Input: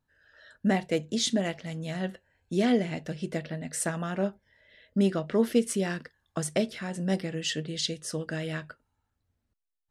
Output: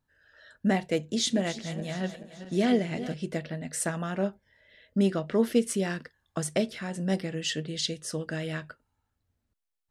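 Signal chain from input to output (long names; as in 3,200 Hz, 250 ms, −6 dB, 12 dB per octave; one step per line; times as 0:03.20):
0:00.95–0:03.14: feedback delay that plays each chunk backwards 214 ms, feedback 64%, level −13 dB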